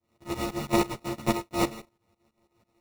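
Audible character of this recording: a buzz of ramps at a fixed pitch in blocks of 128 samples; tremolo saw up 6.1 Hz, depth 95%; aliases and images of a low sample rate 1600 Hz, jitter 0%; a shimmering, thickened sound

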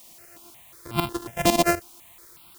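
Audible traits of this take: a buzz of ramps at a fixed pitch in blocks of 128 samples; tremolo saw up 8 Hz, depth 85%; a quantiser's noise floor 10-bit, dither triangular; notches that jump at a steady rate 5.5 Hz 400–1800 Hz

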